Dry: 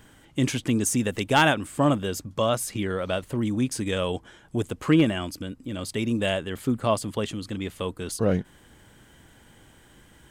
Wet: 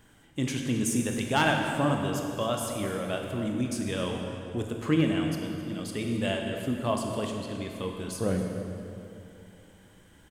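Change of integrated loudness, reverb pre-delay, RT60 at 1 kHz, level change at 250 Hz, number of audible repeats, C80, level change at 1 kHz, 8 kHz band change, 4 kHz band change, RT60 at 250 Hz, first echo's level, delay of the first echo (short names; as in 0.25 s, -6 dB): -3.5 dB, 18 ms, 2.5 s, -3.0 dB, 1, 4.0 dB, -3.5 dB, -4.5 dB, -4.0 dB, 3.0 s, -16.5 dB, 0.263 s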